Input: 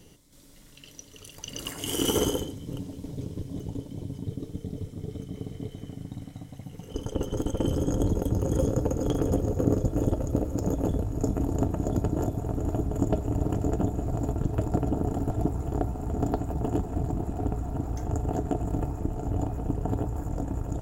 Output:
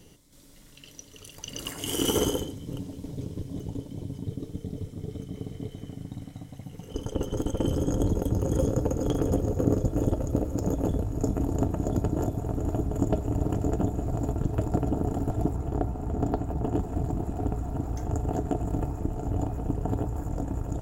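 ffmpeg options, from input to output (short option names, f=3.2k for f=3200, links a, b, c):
-filter_complex "[0:a]asettb=1/sr,asplit=3[a][b][c];[a]atrim=end=15.564[d];[b]atrim=start=15.56:end=16.79,asetpts=PTS-STARTPTS,afade=t=in:d=0.004:c=qsin,afade=t=out:st=1.226:d=0.004:c=qsin,highshelf=f=4.1k:g=-6[e];[c]atrim=start=16.786[f];[d][e]acrossfade=d=0.004:c1=hsin:c2=qsin[g];[g][f]acrossfade=d=0.004:c1=qsin:c2=hsin"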